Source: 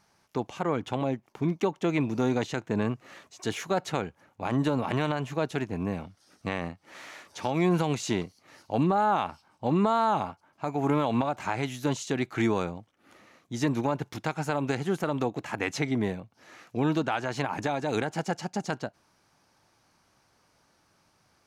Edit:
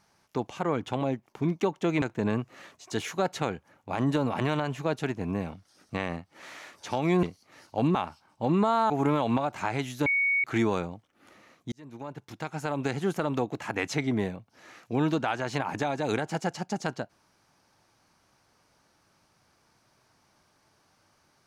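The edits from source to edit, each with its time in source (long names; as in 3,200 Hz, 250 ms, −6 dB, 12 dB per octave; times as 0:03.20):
0:02.02–0:02.54: remove
0:07.75–0:08.19: remove
0:08.91–0:09.17: remove
0:10.12–0:10.74: remove
0:11.90–0:12.28: beep over 2,230 Hz −22 dBFS
0:13.56–0:14.84: fade in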